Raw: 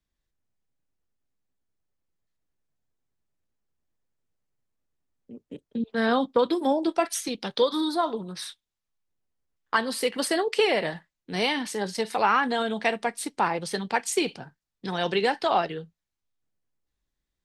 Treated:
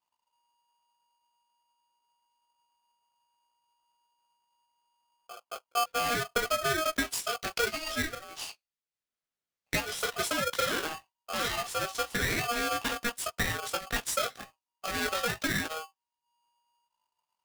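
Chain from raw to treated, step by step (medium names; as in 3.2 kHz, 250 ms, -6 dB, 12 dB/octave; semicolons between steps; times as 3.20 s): block-companded coder 5-bit; saturation -19 dBFS, distortion -13 dB; chorus 0.49 Hz, delay 17 ms, depth 2.2 ms; peak limiter -24 dBFS, peak gain reduction 5 dB; transient shaper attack +3 dB, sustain -5 dB; 7.76–10.01 s: frequency weighting A; polarity switched at an audio rate 950 Hz; trim +1 dB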